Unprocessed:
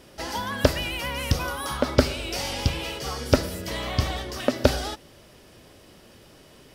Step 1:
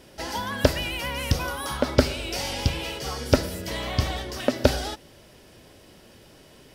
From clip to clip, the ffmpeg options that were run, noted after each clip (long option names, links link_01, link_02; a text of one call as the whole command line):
ffmpeg -i in.wav -af "bandreject=frequency=1200:width=12" out.wav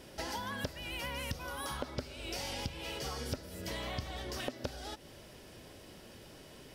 ffmpeg -i in.wav -af "acompressor=threshold=-34dB:ratio=8,volume=-2dB" out.wav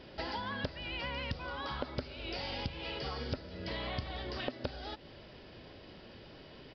ffmpeg -i in.wav -af "aresample=11025,aresample=44100,volume=1dB" out.wav